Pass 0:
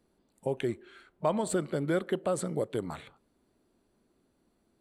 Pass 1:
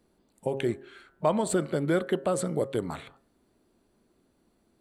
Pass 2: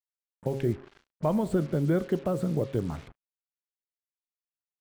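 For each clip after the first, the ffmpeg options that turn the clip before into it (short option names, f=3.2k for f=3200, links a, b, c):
-af "bandreject=f=135.9:t=h:w=4,bandreject=f=271.8:t=h:w=4,bandreject=f=407.7:t=h:w=4,bandreject=f=543.6:t=h:w=4,bandreject=f=679.5:t=h:w=4,bandreject=f=815.4:t=h:w=4,bandreject=f=951.3:t=h:w=4,bandreject=f=1.0872k:t=h:w=4,bandreject=f=1.2231k:t=h:w=4,bandreject=f=1.359k:t=h:w=4,bandreject=f=1.4949k:t=h:w=4,bandreject=f=1.6308k:t=h:w=4,bandreject=f=1.7667k:t=h:w=4,bandreject=f=1.9026k:t=h:w=4,volume=3.5dB"
-af "aemphasis=mode=reproduction:type=riaa,acrusher=bits=6:mix=0:aa=0.5,volume=-5dB"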